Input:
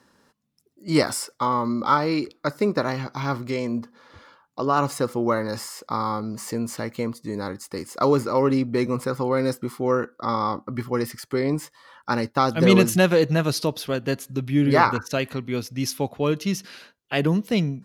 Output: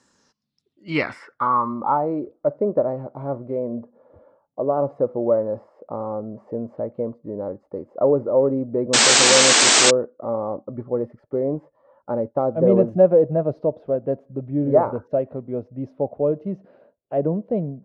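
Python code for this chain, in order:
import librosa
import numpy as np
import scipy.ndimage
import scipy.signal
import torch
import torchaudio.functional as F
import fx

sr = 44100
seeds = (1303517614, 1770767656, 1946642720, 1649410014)

y = fx.filter_sweep_lowpass(x, sr, from_hz=7400.0, to_hz=600.0, start_s=0.09, end_s=2.17, q=4.6)
y = fx.spec_paint(y, sr, seeds[0], shape='noise', start_s=8.93, length_s=0.98, low_hz=200.0, high_hz=8500.0, level_db=-10.0)
y = y * 10.0 ** (-4.5 / 20.0)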